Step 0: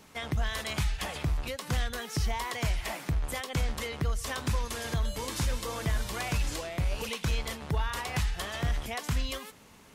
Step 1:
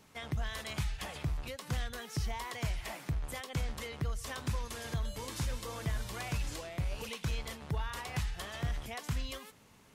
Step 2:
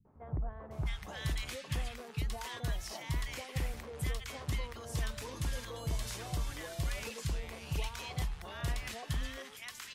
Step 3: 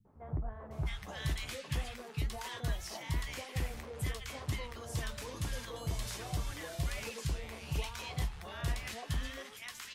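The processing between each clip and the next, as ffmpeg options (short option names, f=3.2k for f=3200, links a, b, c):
-af "equalizer=f=120:w=2.5:g=5,volume=-6.5dB"
-filter_complex "[0:a]acrossover=split=190|1100[a][b][c];[b]adelay=50[d];[c]adelay=710[e];[a][d][e]amix=inputs=3:normalize=0"
-af "flanger=delay=8.5:depth=6.4:regen=-45:speed=2:shape=triangular,volume=4dB"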